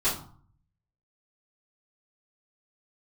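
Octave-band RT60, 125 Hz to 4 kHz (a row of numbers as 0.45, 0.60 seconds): 0.90, 0.65, 0.45, 0.55, 0.35, 0.30 seconds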